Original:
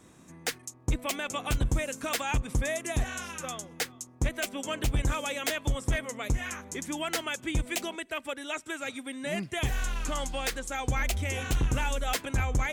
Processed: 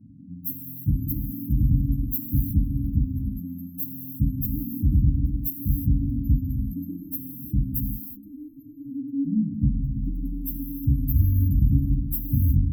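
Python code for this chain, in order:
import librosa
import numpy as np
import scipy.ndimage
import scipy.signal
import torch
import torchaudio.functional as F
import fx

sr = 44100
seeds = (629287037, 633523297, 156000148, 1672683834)

y = fx.pitch_bins(x, sr, semitones=1.0)
y = scipy.signal.sosfilt(scipy.signal.butter(4, 57.0, 'highpass', fs=sr, output='sos'), y)
y = fx.spec_gate(y, sr, threshold_db=-25, keep='strong')
y = fx.high_shelf(y, sr, hz=12000.0, db=7.5)
y = fx.fold_sine(y, sr, drive_db=5, ceiling_db=-17.0)
y = fx.brickwall_bandstop(y, sr, low_hz=290.0, high_hz=12000.0)
y = fx.rev_gated(y, sr, seeds[0], gate_ms=380, shape='flat', drr_db=2.5)
y = y * librosa.db_to_amplitude(5.5)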